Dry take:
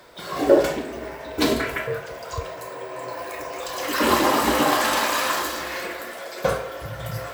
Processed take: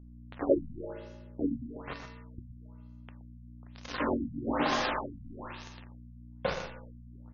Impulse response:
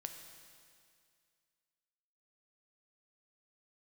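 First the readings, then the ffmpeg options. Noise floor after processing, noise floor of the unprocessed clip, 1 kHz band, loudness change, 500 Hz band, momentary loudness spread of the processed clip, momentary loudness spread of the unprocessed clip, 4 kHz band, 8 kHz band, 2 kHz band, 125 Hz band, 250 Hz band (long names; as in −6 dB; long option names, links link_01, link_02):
−50 dBFS, −37 dBFS, −13.5 dB, −10.5 dB, −12.0 dB, 22 LU, 14 LU, −15.0 dB, −22.5 dB, −14.0 dB, −8.5 dB, −8.5 dB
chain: -filter_complex "[0:a]aeval=exprs='val(0)*gte(abs(val(0)),0.0944)':channel_layout=same,asplit=2[link_01][link_02];[link_02]adelay=122.4,volume=-8dB,highshelf=frequency=4000:gain=-2.76[link_03];[link_01][link_03]amix=inputs=2:normalize=0,aeval=exprs='val(0)+0.0112*(sin(2*PI*60*n/s)+sin(2*PI*2*60*n/s)/2+sin(2*PI*3*60*n/s)/3+sin(2*PI*4*60*n/s)/4+sin(2*PI*5*60*n/s)/5)':channel_layout=same[link_04];[1:a]atrim=start_sample=2205,asetrate=79380,aresample=44100[link_05];[link_04][link_05]afir=irnorm=-1:irlink=0,afftfilt=real='re*lt(b*sr/1024,250*pow(7000/250,0.5+0.5*sin(2*PI*1.1*pts/sr)))':imag='im*lt(b*sr/1024,250*pow(7000/250,0.5+0.5*sin(2*PI*1.1*pts/sr)))':win_size=1024:overlap=0.75"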